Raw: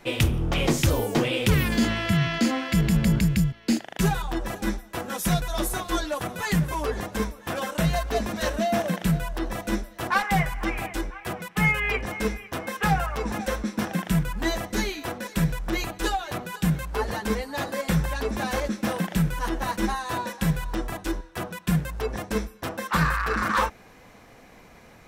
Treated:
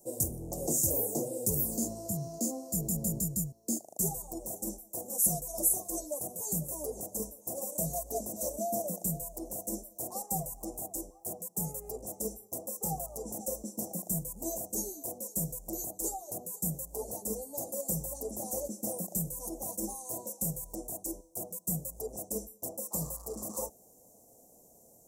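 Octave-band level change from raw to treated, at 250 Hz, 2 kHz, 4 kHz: -13.0 dB, under -40 dB, -21.0 dB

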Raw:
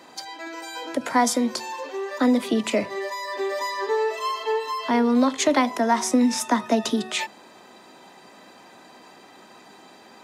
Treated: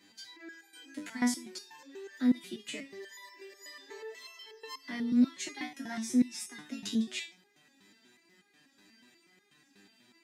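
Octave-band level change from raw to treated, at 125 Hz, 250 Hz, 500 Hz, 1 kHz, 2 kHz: n/a, -8.5 dB, -22.5 dB, -24.5 dB, -13.0 dB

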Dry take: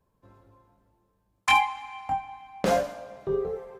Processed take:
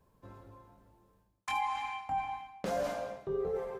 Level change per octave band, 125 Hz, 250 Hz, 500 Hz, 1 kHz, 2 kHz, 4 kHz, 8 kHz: -7.5, -8.5, -6.0, -7.5, -12.5, -13.0, -10.5 dB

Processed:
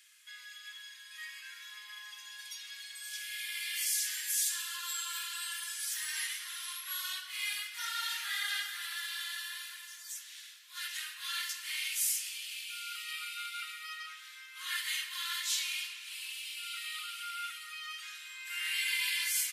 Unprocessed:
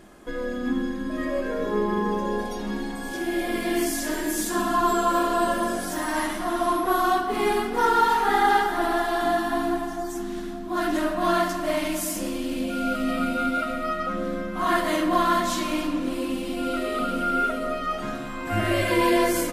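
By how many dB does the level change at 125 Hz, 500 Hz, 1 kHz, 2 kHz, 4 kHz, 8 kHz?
n/a, under -40 dB, -25.0 dB, -8.0 dB, 0.0 dB, 0.0 dB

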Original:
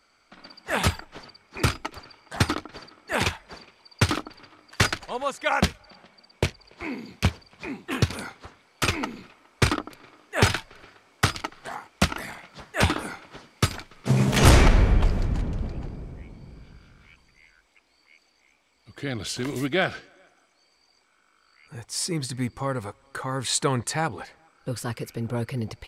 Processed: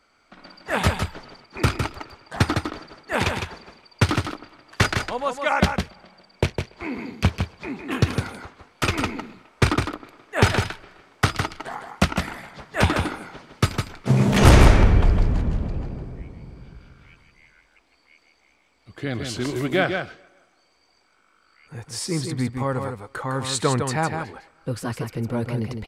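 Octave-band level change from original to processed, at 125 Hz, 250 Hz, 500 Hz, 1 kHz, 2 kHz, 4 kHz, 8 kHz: +4.0, +4.0, +4.0, +3.0, +2.0, 0.0, -1.5 dB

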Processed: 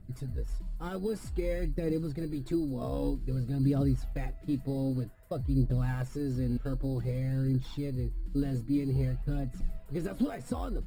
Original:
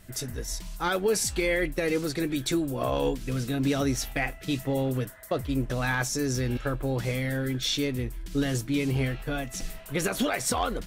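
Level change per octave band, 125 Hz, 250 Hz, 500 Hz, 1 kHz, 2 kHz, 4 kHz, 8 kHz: 0.0 dB, -3.0 dB, -7.5 dB, -13.0 dB, -18.0 dB, -19.5 dB, under -20 dB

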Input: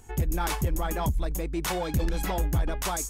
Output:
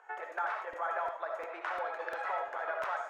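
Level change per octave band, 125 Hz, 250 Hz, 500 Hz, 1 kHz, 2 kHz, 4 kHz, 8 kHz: under -40 dB, -27.0 dB, -4.5 dB, -1.0 dB, +0.5 dB, -17.5 dB, under -30 dB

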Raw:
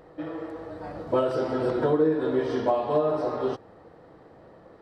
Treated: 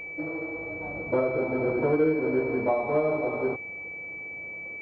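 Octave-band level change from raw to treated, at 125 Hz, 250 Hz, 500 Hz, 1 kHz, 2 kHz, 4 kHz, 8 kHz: -0.5 dB, -0.5 dB, -1.0 dB, -3.0 dB, +11.0 dB, under -15 dB, n/a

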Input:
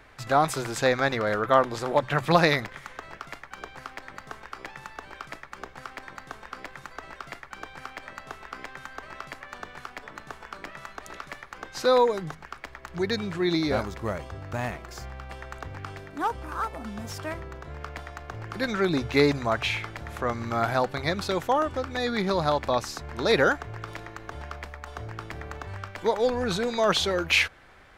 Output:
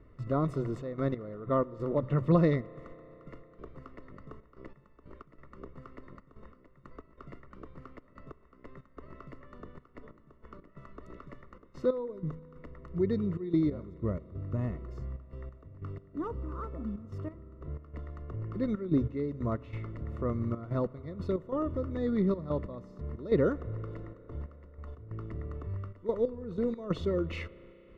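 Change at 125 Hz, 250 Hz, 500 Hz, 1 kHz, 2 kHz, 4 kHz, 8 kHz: +0.5 dB, -1.0 dB, -7.0 dB, -15.0 dB, -20.5 dB, under -20 dB, under -25 dB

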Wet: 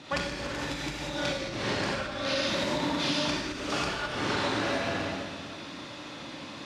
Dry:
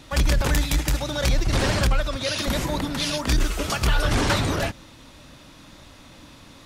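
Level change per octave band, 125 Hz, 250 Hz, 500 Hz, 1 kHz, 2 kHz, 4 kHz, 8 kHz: -14.0, -4.5, -3.5, -3.5, -3.5, -4.0, -10.0 dB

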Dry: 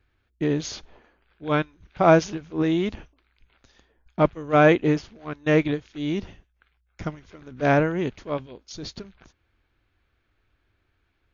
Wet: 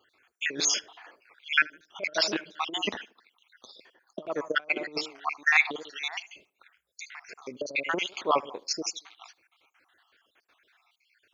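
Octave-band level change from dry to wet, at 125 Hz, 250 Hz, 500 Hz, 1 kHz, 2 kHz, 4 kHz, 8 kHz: -26.5 dB, -16.0 dB, -12.5 dB, -6.0 dB, +2.5 dB, +7.0 dB, n/a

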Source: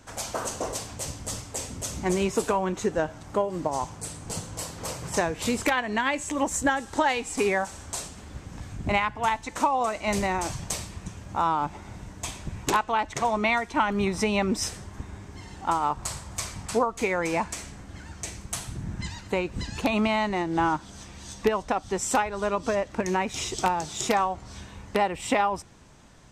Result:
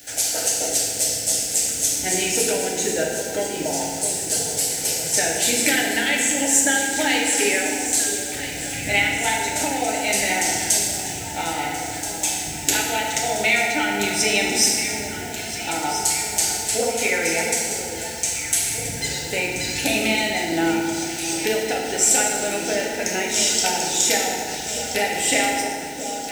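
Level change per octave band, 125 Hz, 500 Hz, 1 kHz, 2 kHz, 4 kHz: -1.0, +3.0, -0.5, +8.5, +13.0 dB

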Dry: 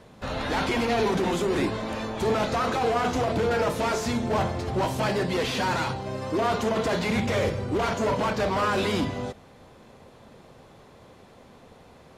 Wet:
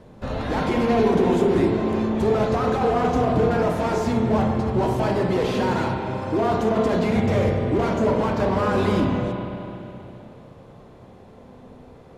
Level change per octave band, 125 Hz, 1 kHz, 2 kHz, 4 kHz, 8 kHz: +6.5, +2.5, -1.5, -4.0, -5.5 dB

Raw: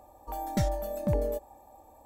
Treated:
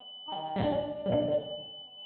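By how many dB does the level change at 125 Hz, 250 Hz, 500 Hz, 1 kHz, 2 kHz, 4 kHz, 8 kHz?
-5.5 dB, +1.0 dB, +2.5 dB, 0.0 dB, +0.5 dB, +12.0 dB, under -35 dB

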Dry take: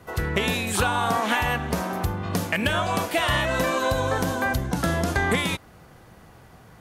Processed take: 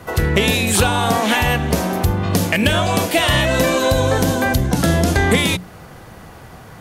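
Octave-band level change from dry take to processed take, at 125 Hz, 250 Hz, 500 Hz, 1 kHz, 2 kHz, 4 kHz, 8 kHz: +9.5, +9.0, +8.0, +4.5, +5.5, +9.0, +10.0 dB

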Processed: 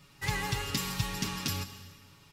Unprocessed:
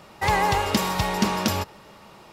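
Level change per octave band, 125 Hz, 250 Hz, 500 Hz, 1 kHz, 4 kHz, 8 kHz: -5.5, -12.0, -16.0, -16.5, -6.0, -4.5 dB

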